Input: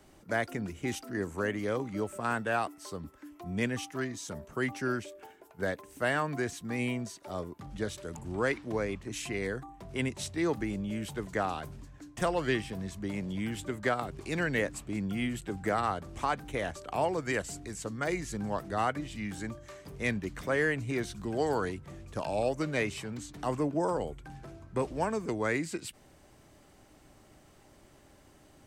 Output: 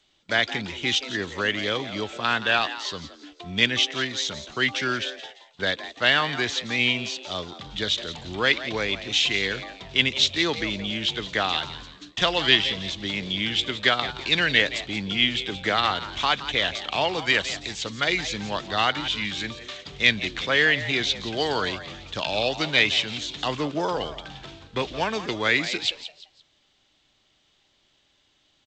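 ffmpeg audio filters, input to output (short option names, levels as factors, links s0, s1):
-filter_complex "[0:a]lowpass=f=3500:t=q:w=4.4,agate=range=0.141:threshold=0.00355:ratio=16:detection=peak,crystalizer=i=7.5:c=0,asplit=4[s0][s1][s2][s3];[s1]adelay=172,afreqshift=140,volume=0.224[s4];[s2]adelay=344,afreqshift=280,volume=0.0741[s5];[s3]adelay=516,afreqshift=420,volume=0.0243[s6];[s0][s4][s5][s6]amix=inputs=4:normalize=0,volume=1.19" -ar 16000 -c:a g722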